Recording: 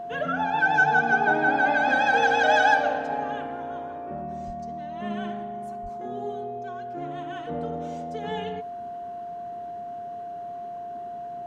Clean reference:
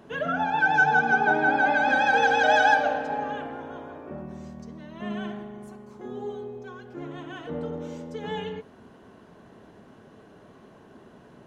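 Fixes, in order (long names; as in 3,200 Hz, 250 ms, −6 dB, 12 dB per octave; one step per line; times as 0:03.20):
notch filter 700 Hz, Q 30
0:04.46–0:04.58: high-pass filter 140 Hz 24 dB per octave
0:05.82–0:05.94: high-pass filter 140 Hz 24 dB per octave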